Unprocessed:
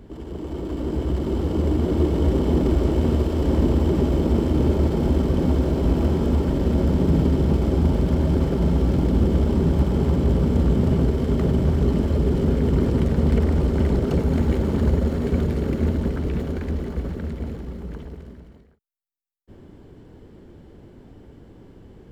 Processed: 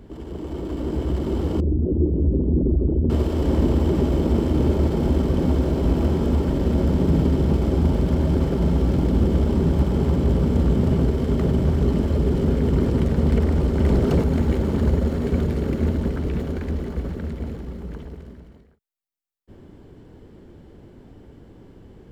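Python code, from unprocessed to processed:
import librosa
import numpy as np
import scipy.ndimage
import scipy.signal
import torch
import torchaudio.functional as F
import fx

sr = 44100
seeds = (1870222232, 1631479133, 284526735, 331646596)

y = fx.envelope_sharpen(x, sr, power=2.0, at=(1.6, 3.1))
y = fx.leveller(y, sr, passes=1, at=(13.84, 14.24))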